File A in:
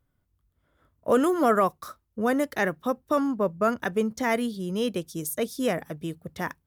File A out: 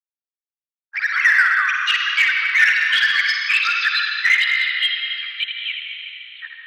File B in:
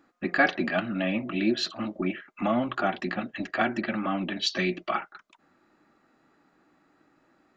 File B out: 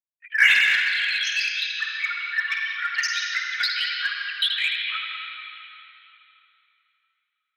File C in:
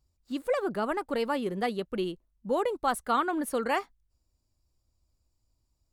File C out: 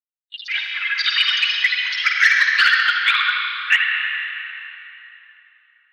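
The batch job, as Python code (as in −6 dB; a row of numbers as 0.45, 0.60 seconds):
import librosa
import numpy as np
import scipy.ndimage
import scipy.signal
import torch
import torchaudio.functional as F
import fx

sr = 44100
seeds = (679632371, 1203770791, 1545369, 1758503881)

p1 = fx.bin_expand(x, sr, power=3.0)
p2 = fx.lpc_vocoder(p1, sr, seeds[0], excitation='whisper', order=8)
p3 = p2 + fx.echo_feedback(p2, sr, ms=80, feedback_pct=24, wet_db=-6, dry=0)
p4 = fx.rev_plate(p3, sr, seeds[1], rt60_s=3.2, hf_ratio=0.85, predelay_ms=115, drr_db=2.0)
p5 = fx.echo_pitch(p4, sr, ms=124, semitones=4, count=2, db_per_echo=-3.0)
p6 = scipy.signal.sosfilt(scipy.signal.butter(8, 1600.0, 'highpass', fs=sr, output='sos'), p5)
p7 = np.clip(10.0 ** (34.0 / 20.0) * p6, -1.0, 1.0) / 10.0 ** (34.0 / 20.0)
p8 = p6 + F.gain(torch.from_numpy(p7), -6.0).numpy()
y = librosa.util.normalize(p8) * 10.0 ** (-3 / 20.0)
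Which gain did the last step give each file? +17.5, +11.5, +21.0 decibels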